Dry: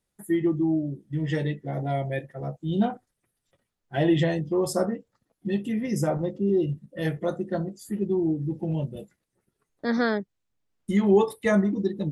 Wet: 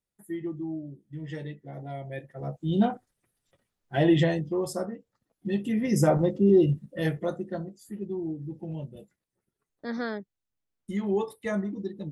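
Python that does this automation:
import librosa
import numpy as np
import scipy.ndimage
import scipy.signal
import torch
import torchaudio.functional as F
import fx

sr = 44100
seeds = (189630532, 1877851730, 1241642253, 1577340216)

y = fx.gain(x, sr, db=fx.line((2.0, -10.0), (2.6, 0.5), (4.23, 0.5), (4.9, -8.0), (6.07, 4.0), (6.71, 4.0), (7.78, -8.0)))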